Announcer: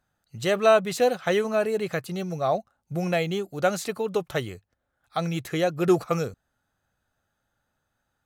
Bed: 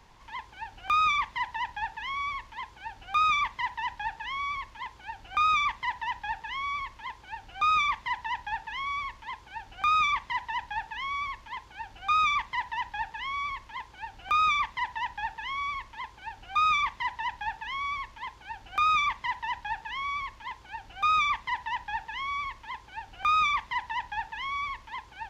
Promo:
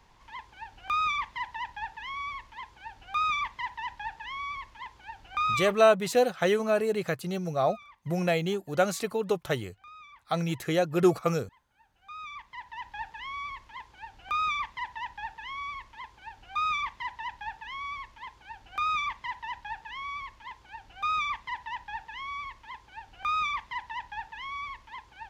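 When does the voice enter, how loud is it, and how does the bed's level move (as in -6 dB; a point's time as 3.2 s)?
5.15 s, -1.5 dB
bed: 5.6 s -3.5 dB
5.93 s -25.5 dB
11.75 s -25.5 dB
12.98 s -4.5 dB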